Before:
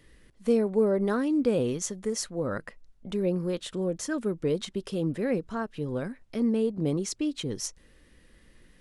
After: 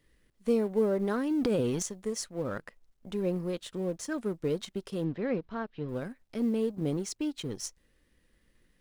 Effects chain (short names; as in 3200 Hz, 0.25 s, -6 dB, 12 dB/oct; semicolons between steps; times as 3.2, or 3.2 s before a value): G.711 law mismatch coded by A; 1.31–1.85 transient shaper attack -5 dB, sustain +10 dB; 5.04–5.89 LPF 4500 Hz 24 dB/oct; gain -2.5 dB